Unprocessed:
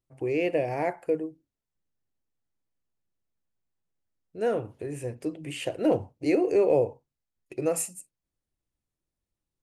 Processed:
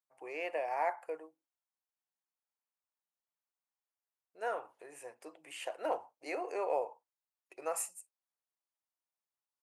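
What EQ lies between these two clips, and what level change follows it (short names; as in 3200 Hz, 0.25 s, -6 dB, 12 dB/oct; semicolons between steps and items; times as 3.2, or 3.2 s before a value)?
dynamic EQ 1200 Hz, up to +5 dB, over -41 dBFS, Q 1.1; resonant high-pass 870 Hz, resonance Q 1.7; bell 3400 Hz -3.5 dB 1.6 oct; -6.5 dB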